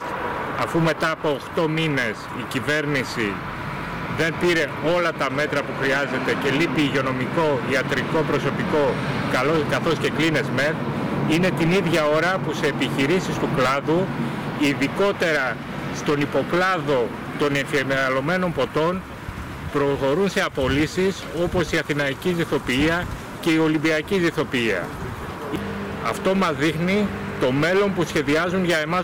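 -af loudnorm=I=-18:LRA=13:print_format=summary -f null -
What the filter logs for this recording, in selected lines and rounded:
Input Integrated:    -21.8 LUFS
Input True Peak:     -14.3 dBTP
Input LRA:             2.3 LU
Input Threshold:     -31.8 LUFS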